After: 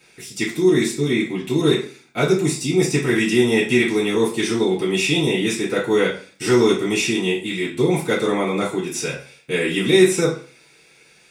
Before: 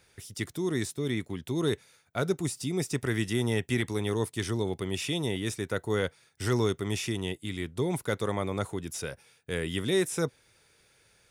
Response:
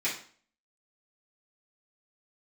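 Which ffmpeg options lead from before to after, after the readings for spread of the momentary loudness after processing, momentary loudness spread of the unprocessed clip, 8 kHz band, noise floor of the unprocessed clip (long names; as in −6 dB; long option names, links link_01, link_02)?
9 LU, 8 LU, +10.5 dB, −65 dBFS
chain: -filter_complex "[0:a]bandreject=frequency=1800:width=27[link_01];[1:a]atrim=start_sample=2205,asetrate=48510,aresample=44100[link_02];[link_01][link_02]afir=irnorm=-1:irlink=0,volume=5.5dB"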